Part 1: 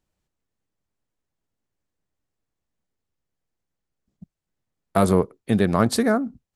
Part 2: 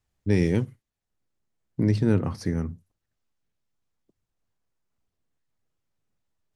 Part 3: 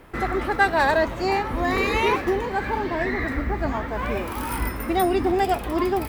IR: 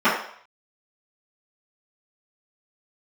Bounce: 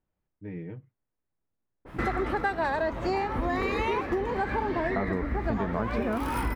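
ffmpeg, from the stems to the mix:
-filter_complex "[0:a]lowpass=2000,volume=0.668[s0];[1:a]lowpass=f=2500:w=0.5412,lowpass=f=2500:w=1.3066,aecho=1:1:6.5:0.94,adelay=150,volume=0.112[s1];[2:a]adynamicequalizer=threshold=0.02:dfrequency=1800:dqfactor=0.7:tfrequency=1800:tqfactor=0.7:attack=5:release=100:ratio=0.375:range=2.5:mode=cutabove:tftype=highshelf,adelay=1850,volume=1.33[s2];[s0][s1][s2]amix=inputs=3:normalize=0,highshelf=f=9500:g=-11,acompressor=threshold=0.0562:ratio=6"

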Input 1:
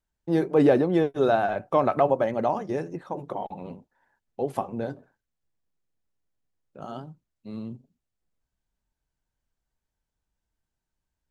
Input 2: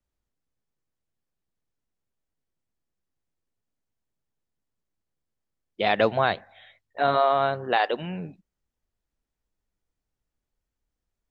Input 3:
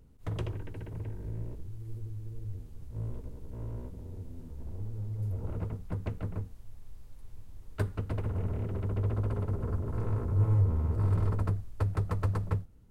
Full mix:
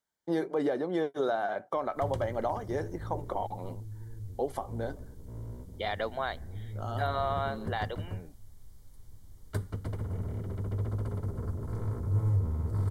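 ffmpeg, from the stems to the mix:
-filter_complex "[0:a]volume=1.12[s0];[1:a]volume=0.447[s1];[2:a]bass=f=250:g=3,treble=f=4000:g=8,adelay=1750,volume=0.668[s2];[s0][s1]amix=inputs=2:normalize=0,highpass=f=410:p=1,alimiter=limit=0.1:level=0:latency=1:release=452,volume=1[s3];[s2][s3]amix=inputs=2:normalize=0,asuperstop=centerf=2600:order=4:qfactor=5.4,lowshelf=f=62:g=-5.5"

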